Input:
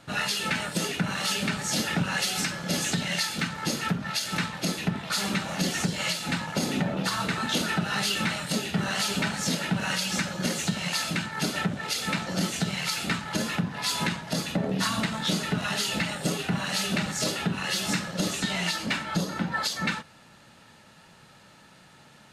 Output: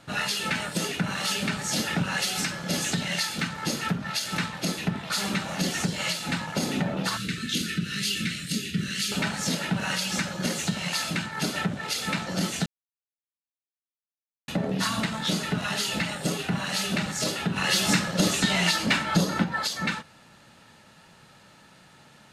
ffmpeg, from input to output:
ffmpeg -i in.wav -filter_complex "[0:a]asettb=1/sr,asplit=3[link_01][link_02][link_03];[link_01]atrim=end=7.174[link_04];[link_02]atrim=start=7.17:end=9.12,asetpts=PTS-STARTPTS,afade=type=in:duration=0.004:curve=qsin,afade=type=out:start_time=1.946:duration=0.004:curve=qsin,asuperstop=centerf=810:order=4:qfactor=0.5[link_05];[link_03]atrim=start=9.116[link_06];[link_04][link_05]acrossfade=duration=0.004:curve1=hsin:curve2=qsin[link_07];[link_07][link_06]acrossfade=duration=0.004:curve1=qsin:curve2=hsin,asplit=5[link_08][link_09][link_10][link_11][link_12];[link_08]atrim=end=12.66,asetpts=PTS-STARTPTS,afade=type=out:start_time=12.656:duration=0.004:curve=hsin[link_13];[link_09]atrim=start=12.66:end=14.48,asetpts=PTS-STARTPTS,volume=0[link_14];[link_10]atrim=start=14.48:end=17.562,asetpts=PTS-STARTPTS,afade=type=in:duration=0.004:curve=hsin[link_15];[link_11]atrim=start=17.558:end=19.442,asetpts=PTS-STARTPTS,volume=5dB[link_16];[link_12]atrim=start=19.438[link_17];[link_13][link_14][link_15]concat=n=3:v=0:a=1[link_18];[link_18][link_16]acrossfade=duration=0.004:curve1=hsin:curve2=hsin[link_19];[link_19][link_17]acrossfade=duration=0.004:curve1=hsin:curve2=hsin" out.wav

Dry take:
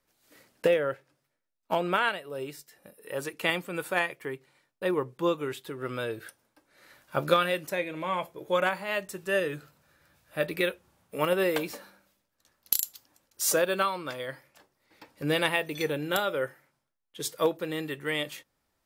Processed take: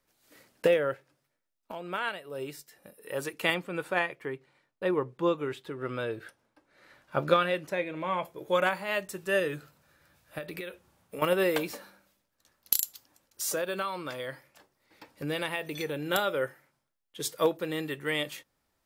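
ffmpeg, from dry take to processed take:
ffmpeg -i in.wav -filter_complex "[0:a]asettb=1/sr,asplit=3[link_01][link_02][link_03];[link_01]atrim=end=3.544[link_04];[link_02]atrim=start=3.54:end=8.25,asetpts=PTS-STARTPTS,afade=type=in:duration=0.004:curve=qsin,afade=type=out:start_time=4.706:duration=0.004:curve=qsin,aemphasis=mode=reproduction:type=50kf[link_05];[link_03]atrim=start=8.246[link_06];[link_04][link_05]acrossfade=duration=0.004:curve1=hsin:curve2=qsin[link_07];[link_07][link_06]acrossfade=duration=0.004:curve1=qsin:curve2=hsin,asettb=1/sr,asplit=3[link_08][link_09][link_10];[link_08]atrim=end=10.384[link_11];[link_09]atrim=start=10.38:end=11.22,asetpts=PTS-STARTPTS,afade=type=in:duration=0.004:curve=qsin,afade=type=out:start_time=0.836:duration=0.004:curve=qsin,acompressor=threshold=-34dB:ratio=16:attack=3.2:release=140:knee=1:detection=peak[link_12];[link_10]atrim=start=11.216[link_13];[link_11][link_12]acrossfade=duration=0.004:curve1=hsin:curve2=qsin[link_14];[link_14][link_13]acrossfade=duration=0.004:curve1=qsin:curve2=hsin,asplit=3[link_15][link_16][link_17];[link_15]afade=type=out:start_time=12.85:duration=0.02[link_18];[link_16]acompressor=threshold=-32dB:ratio=2:attack=3.2:release=140:knee=1:detection=peak,afade=type=in:start_time=12.85:duration=0.02,afade=type=out:start_time=16.05:duration=0.02[link_19];[link_17]afade=type=in:start_time=16.05:duration=0.02[link_20];[link_18][link_19][link_20]amix=inputs=3:normalize=0,asplit=2[link_21][link_22];[link_21]atrim=end=1.72,asetpts=PTS-STARTPTS,afade=type=out:start_time=1.716:duration=0.004:curve=hsin:silence=0.177828[link_23];[link_22]atrim=start=1.72,asetpts=PTS-STARTPTS,afade=type=in:duration=0.79:silence=0.177828[link_24];[link_23][link_24]concat=n=2:v=0:a=1" out.wav

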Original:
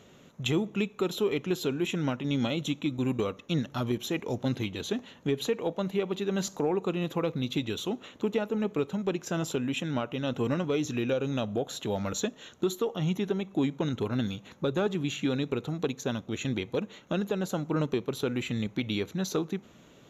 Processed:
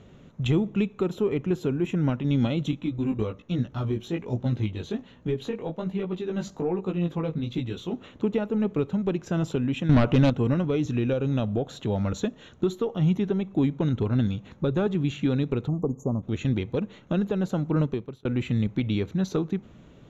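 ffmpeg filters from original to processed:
ffmpeg -i in.wav -filter_complex "[0:a]asettb=1/sr,asplit=3[link_01][link_02][link_03];[link_01]atrim=end=1.034[link_04];[link_02]atrim=start=1.03:end=2.09,asetpts=PTS-STARTPTS,afade=type=in:duration=0.004:curve=qsin,afade=type=out:start_time=1.056:duration=0.004:curve=qsin,equalizer=frequency=3800:width_type=o:width=0.9:gain=-8[link_05];[link_03]atrim=start=2.086[link_06];[link_04][link_05]acrossfade=duration=0.004:curve1=hsin:curve2=qsin[link_07];[link_07][link_06]acrossfade=duration=0.004:curve1=qsin:curve2=hsin,asettb=1/sr,asplit=3[link_08][link_09][link_10];[link_08]atrim=end=2.714[link_11];[link_09]atrim=start=2.71:end=7.94,asetpts=PTS-STARTPTS,afade=type=in:duration=0.004:curve=qsin,afade=type=out:start_time=5.226:duration=0.004:curve=qsin,flanger=delay=16:depth=3.2:speed=1.2[link_12];[link_10]atrim=start=7.936[link_13];[link_11][link_12]acrossfade=duration=0.004:curve1=hsin:curve2=qsin[link_14];[link_14][link_13]acrossfade=duration=0.004:curve1=qsin:curve2=hsin,asettb=1/sr,asplit=3[link_15][link_16][link_17];[link_15]atrim=end=9.894[link_18];[link_16]atrim=start=9.89:end=10.3,asetpts=PTS-STARTPTS,afade=type=in:duration=0.004:curve=qsin,afade=type=out:start_time=0.406:duration=0.004:curve=qsin,aeval=exprs='0.126*sin(PI/2*2.24*val(0)/0.126)':channel_layout=same[link_19];[link_17]atrim=start=10.296[link_20];[link_18][link_19]acrossfade=duration=0.004:curve1=hsin:curve2=qsin[link_21];[link_21][link_20]acrossfade=duration=0.004:curve1=qsin:curve2=hsin,asplit=3[link_22][link_23][link_24];[link_22]afade=type=out:start_time=15.67:duration=0.02[link_25];[link_23]asuperstop=centerf=2800:order=20:qfactor=0.54,afade=type=in:start_time=15.67:duration=0.02,afade=type=out:start_time=16.22:duration=0.02[link_26];[link_24]afade=type=in:start_time=16.22:duration=0.02[link_27];[link_25][link_26][link_27]amix=inputs=3:normalize=0,asplit=2[link_28][link_29];[link_28]atrim=end=18.25,asetpts=PTS-STARTPTS,afade=type=out:start_time=17.79:duration=0.46[link_30];[link_29]atrim=start=18.25,asetpts=PTS-STARTPTS,afade=type=in:duration=0.004:curve=hsin[link_31];[link_30][link_31]concat=n=2:v=0:a=1,aemphasis=mode=reproduction:type=bsi" out.wav

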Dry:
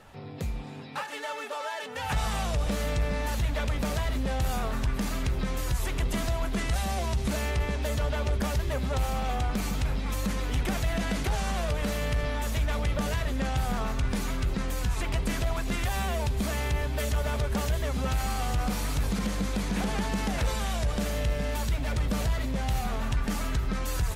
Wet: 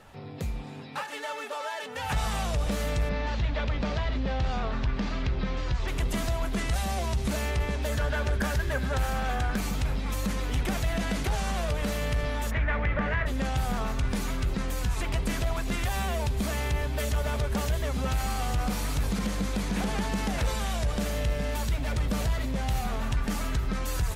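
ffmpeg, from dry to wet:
ffmpeg -i in.wav -filter_complex "[0:a]asettb=1/sr,asplit=3[link_01][link_02][link_03];[link_01]atrim=end=3.094[link_04];[link_02]atrim=start=3.09:end=5.88,asetpts=PTS-STARTPTS,afade=type=in:duration=0.004:curve=qsin,afade=type=out:start_time=2.786:duration=0.004:curve=qsin,lowpass=frequency=4900:width=0.5412,lowpass=frequency=4900:width=1.3066[link_05];[link_03]atrim=start=5.876[link_06];[link_04][link_05]acrossfade=duration=0.004:curve1=hsin:curve2=qsin[link_07];[link_07][link_06]acrossfade=duration=0.004:curve1=qsin:curve2=hsin,asettb=1/sr,asplit=3[link_08][link_09][link_10];[link_08]atrim=end=7.924[link_11];[link_09]atrim=start=7.92:end=9.59,asetpts=PTS-STARTPTS,afade=type=in:duration=0.004:curve=qsin,afade=type=out:start_time=1.666:duration=0.004:curve=qsin,equalizer=frequency=1600:width_type=o:width=0.24:gain=12.5[link_12];[link_10]atrim=start=9.586[link_13];[link_11][link_12]acrossfade=duration=0.004:curve1=hsin:curve2=qsin[link_14];[link_14][link_13]acrossfade=duration=0.004:curve1=qsin:curve2=hsin,asplit=3[link_15][link_16][link_17];[link_15]afade=type=out:start_time=12.5:duration=0.02[link_18];[link_16]lowpass=frequency=1900:width_type=q:width=2.9,afade=type=in:start_time=12.5:duration=0.02,afade=type=out:start_time=13.25:duration=0.02[link_19];[link_17]afade=type=in:start_time=13.25:duration=0.02[link_20];[link_18][link_19][link_20]amix=inputs=3:normalize=0" out.wav

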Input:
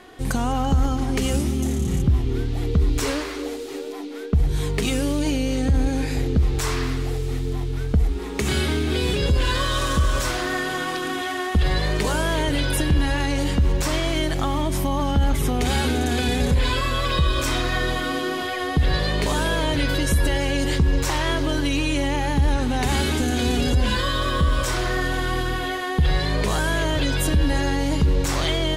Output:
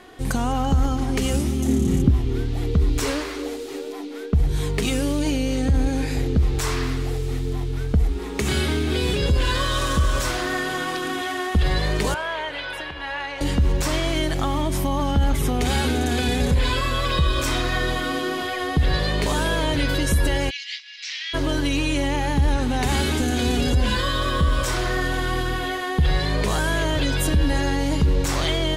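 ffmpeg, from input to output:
ffmpeg -i in.wav -filter_complex "[0:a]asettb=1/sr,asplit=3[link_01][link_02][link_03];[link_01]atrim=end=1.684[link_04];[link_02]atrim=start=1.68:end=2.11,asetpts=PTS-STARTPTS,afade=type=in:duration=0.004:curve=qsin,afade=type=out:start_time=0.426:duration=0.004:curve=qsin,equalizer=frequency=280:width=1.5:gain=9[link_05];[link_03]atrim=start=2.106[link_06];[link_04][link_05]acrossfade=duration=0.004:curve1=hsin:curve2=qsin[link_07];[link_07][link_06]acrossfade=duration=0.004:curve1=qsin:curve2=hsin,asettb=1/sr,asplit=3[link_08][link_09][link_10];[link_08]atrim=end=12.144[link_11];[link_09]atrim=start=12.14:end=13.41,asetpts=PTS-STARTPTS,afade=type=in:duration=0.004:curve=qsin,afade=type=out:start_time=1.266:duration=0.004:curve=qsin,acrossover=split=570 3600:gain=0.0708 1 0.0891[link_12][link_13][link_14];[link_12][link_13][link_14]amix=inputs=3:normalize=0[link_15];[link_10]atrim=start=13.406[link_16];[link_11][link_15]acrossfade=duration=0.004:curve1=hsin:curve2=qsin[link_17];[link_17][link_16]acrossfade=duration=0.004:curve1=qsin:curve2=hsin,asplit=3[link_18][link_19][link_20];[link_18]afade=type=out:start_time=20.49:duration=0.02[link_21];[link_19]asuperpass=centerf=3400:order=8:qfactor=0.91,afade=type=in:start_time=20.49:duration=0.02,afade=type=out:start_time=21.33:duration=0.02[link_22];[link_20]afade=type=in:start_time=21.33:duration=0.02[link_23];[link_21][link_22][link_23]amix=inputs=3:normalize=0" out.wav

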